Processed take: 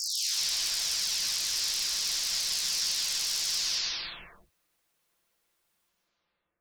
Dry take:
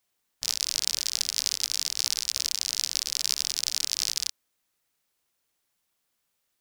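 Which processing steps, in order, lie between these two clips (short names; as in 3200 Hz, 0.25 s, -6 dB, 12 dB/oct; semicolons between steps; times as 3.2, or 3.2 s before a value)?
spectral delay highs early, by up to 0.719 s; in parallel at -3 dB: limiter -23.5 dBFS, peak gain reduction 12 dB; on the sum: high shelf 4300 Hz -6 dB; non-linear reverb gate 0.22 s rising, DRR 2.5 dB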